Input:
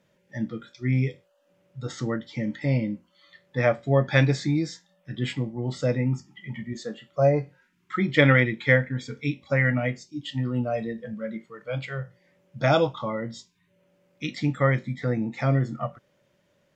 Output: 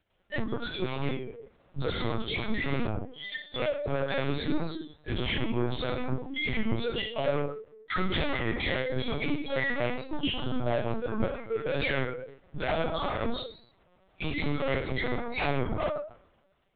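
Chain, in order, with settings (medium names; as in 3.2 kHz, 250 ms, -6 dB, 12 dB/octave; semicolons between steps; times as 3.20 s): coarse spectral quantiser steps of 15 dB; steep high-pass 160 Hz 48 dB/octave; peaking EQ 1.3 kHz -7.5 dB 0.83 oct; compression 12:1, threshold -37 dBFS, peak gain reduction 21.5 dB; waveshaping leveller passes 5; saturation -32 dBFS, distortion -16 dB; plate-style reverb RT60 1.2 s, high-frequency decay 0.75×, DRR 0 dB; spectral noise reduction 14 dB; LPC vocoder at 8 kHz pitch kept; warped record 33 1/3 rpm, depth 100 cents; trim +4 dB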